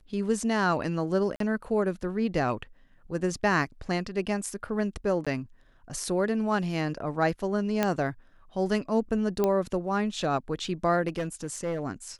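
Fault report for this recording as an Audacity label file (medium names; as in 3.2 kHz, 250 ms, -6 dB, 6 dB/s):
1.360000	1.400000	dropout 43 ms
5.250000	5.270000	dropout 16 ms
7.830000	7.830000	pop -10 dBFS
9.440000	9.440000	pop -13 dBFS
11.070000	11.830000	clipped -25.5 dBFS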